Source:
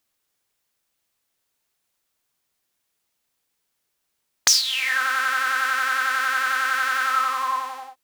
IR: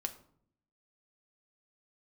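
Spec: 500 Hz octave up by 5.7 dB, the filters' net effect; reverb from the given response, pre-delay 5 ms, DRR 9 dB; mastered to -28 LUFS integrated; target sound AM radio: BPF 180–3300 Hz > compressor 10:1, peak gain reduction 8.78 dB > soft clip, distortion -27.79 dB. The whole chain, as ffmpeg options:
-filter_complex "[0:a]equalizer=f=500:t=o:g=6,asplit=2[a][b];[1:a]atrim=start_sample=2205,adelay=5[c];[b][c]afir=irnorm=-1:irlink=0,volume=-9dB[d];[a][d]amix=inputs=2:normalize=0,highpass=180,lowpass=3.3k,acompressor=threshold=-25dB:ratio=10,asoftclip=threshold=-14.5dB"

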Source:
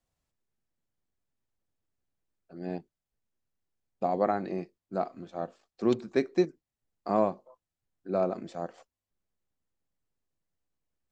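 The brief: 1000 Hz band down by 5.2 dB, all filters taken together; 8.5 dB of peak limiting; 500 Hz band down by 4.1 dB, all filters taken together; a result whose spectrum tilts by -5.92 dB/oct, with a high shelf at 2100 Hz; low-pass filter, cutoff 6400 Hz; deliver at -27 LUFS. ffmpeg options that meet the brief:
-af "lowpass=6.4k,equalizer=f=500:t=o:g=-4,equalizer=f=1k:t=o:g=-4,highshelf=f=2.1k:g=-8.5,volume=12dB,alimiter=limit=-12dB:level=0:latency=1"

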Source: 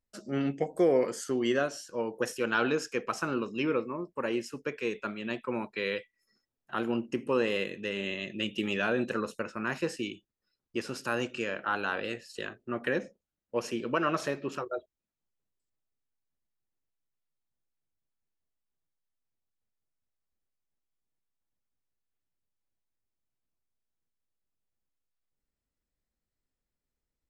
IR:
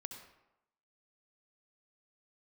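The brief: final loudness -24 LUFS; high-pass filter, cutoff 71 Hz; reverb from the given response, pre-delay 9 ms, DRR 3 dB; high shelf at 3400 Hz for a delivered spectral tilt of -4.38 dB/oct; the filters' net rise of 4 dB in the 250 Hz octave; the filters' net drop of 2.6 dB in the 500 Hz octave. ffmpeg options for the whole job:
-filter_complex "[0:a]highpass=71,equalizer=f=250:t=o:g=7,equalizer=f=500:t=o:g=-6,highshelf=f=3.4k:g=6.5,asplit=2[a][b];[1:a]atrim=start_sample=2205,adelay=9[c];[b][c]afir=irnorm=-1:irlink=0,volume=0.5dB[d];[a][d]amix=inputs=2:normalize=0,volume=5dB"

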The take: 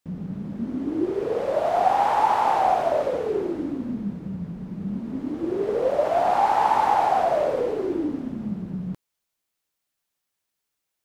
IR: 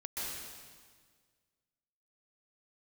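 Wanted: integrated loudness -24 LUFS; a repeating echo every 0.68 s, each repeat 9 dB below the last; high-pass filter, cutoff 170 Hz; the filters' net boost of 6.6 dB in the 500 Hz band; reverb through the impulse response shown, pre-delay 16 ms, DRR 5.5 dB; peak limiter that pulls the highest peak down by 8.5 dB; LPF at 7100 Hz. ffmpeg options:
-filter_complex "[0:a]highpass=170,lowpass=7.1k,equalizer=f=500:t=o:g=8.5,alimiter=limit=-12dB:level=0:latency=1,aecho=1:1:680|1360|2040|2720:0.355|0.124|0.0435|0.0152,asplit=2[a][b];[1:a]atrim=start_sample=2205,adelay=16[c];[b][c]afir=irnorm=-1:irlink=0,volume=-8dB[d];[a][d]amix=inputs=2:normalize=0,volume=-3.5dB"

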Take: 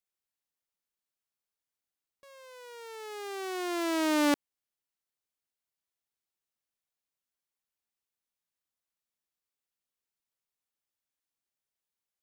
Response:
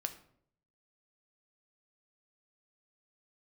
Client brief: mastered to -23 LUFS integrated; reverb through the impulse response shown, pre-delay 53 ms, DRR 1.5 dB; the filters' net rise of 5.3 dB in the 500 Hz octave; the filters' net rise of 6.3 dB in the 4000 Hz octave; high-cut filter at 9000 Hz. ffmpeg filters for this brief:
-filter_complex "[0:a]lowpass=9k,equalizer=f=500:t=o:g=7.5,equalizer=f=4k:t=o:g=8,asplit=2[a][b];[1:a]atrim=start_sample=2205,adelay=53[c];[b][c]afir=irnorm=-1:irlink=0,volume=-1.5dB[d];[a][d]amix=inputs=2:normalize=0,volume=2.5dB"

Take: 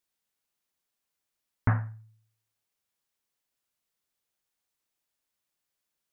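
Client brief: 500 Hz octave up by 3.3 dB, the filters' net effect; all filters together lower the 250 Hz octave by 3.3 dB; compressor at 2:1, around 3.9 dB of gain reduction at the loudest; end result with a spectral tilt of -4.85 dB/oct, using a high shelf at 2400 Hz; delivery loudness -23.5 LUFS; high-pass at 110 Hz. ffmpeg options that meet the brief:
-af "highpass=110,equalizer=f=250:t=o:g=-4.5,equalizer=f=500:t=o:g=5.5,highshelf=f=2.4k:g=-3.5,acompressor=threshold=-30dB:ratio=2,volume=15dB"

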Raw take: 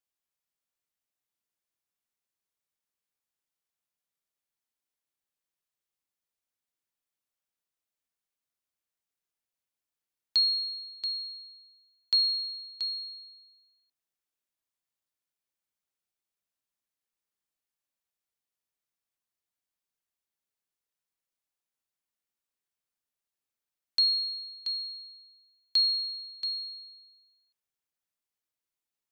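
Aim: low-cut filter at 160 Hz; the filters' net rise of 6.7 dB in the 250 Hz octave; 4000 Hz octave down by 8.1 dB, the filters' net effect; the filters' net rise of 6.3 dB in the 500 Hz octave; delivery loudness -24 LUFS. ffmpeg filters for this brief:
-af "highpass=160,equalizer=f=250:t=o:g=7.5,equalizer=f=500:t=o:g=6,equalizer=f=4k:t=o:g=-8.5,volume=12dB"

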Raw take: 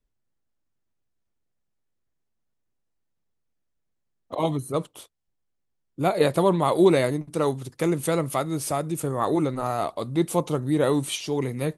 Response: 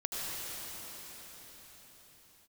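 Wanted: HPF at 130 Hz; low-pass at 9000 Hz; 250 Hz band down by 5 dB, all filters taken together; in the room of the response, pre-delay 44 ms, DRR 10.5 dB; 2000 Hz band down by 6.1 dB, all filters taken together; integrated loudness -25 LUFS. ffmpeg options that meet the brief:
-filter_complex "[0:a]highpass=130,lowpass=9k,equalizer=f=250:t=o:g=-7.5,equalizer=f=2k:t=o:g=-7.5,asplit=2[a][b];[1:a]atrim=start_sample=2205,adelay=44[c];[b][c]afir=irnorm=-1:irlink=0,volume=-16dB[d];[a][d]amix=inputs=2:normalize=0,volume=2dB"

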